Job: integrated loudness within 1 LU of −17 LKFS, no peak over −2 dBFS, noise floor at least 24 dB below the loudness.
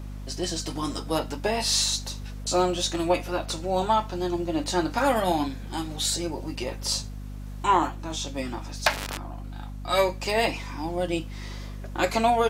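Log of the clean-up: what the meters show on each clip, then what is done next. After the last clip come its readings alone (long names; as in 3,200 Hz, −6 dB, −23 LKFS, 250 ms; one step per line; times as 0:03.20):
mains hum 50 Hz; hum harmonics up to 250 Hz; level of the hum −34 dBFS; integrated loudness −27.0 LKFS; sample peak −7.0 dBFS; target loudness −17.0 LKFS
→ hum removal 50 Hz, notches 5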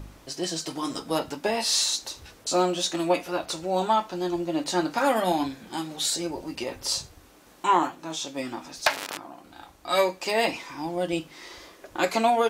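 mains hum none found; integrated loudness −27.0 LKFS; sample peak −7.5 dBFS; target loudness −17.0 LKFS
→ level +10 dB
brickwall limiter −2 dBFS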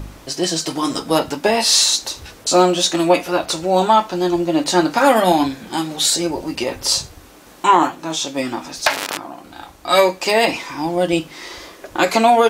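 integrated loudness −17.5 LKFS; sample peak −2.0 dBFS; background noise floor −43 dBFS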